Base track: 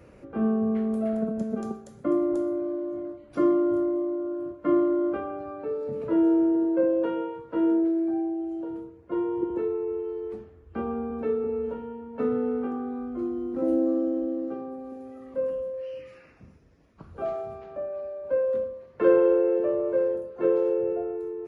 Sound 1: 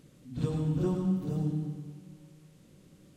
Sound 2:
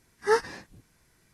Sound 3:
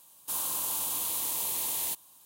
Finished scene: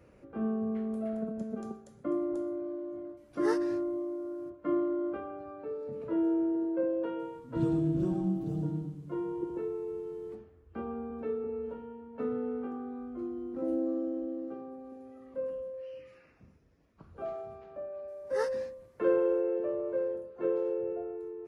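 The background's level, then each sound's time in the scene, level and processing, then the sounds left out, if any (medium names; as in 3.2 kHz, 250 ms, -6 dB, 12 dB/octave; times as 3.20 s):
base track -7.5 dB
3.17 s: add 2 -11.5 dB
7.19 s: add 1 -9 dB + bass shelf 460 Hz +7 dB
18.08 s: add 2 -12 dB
not used: 3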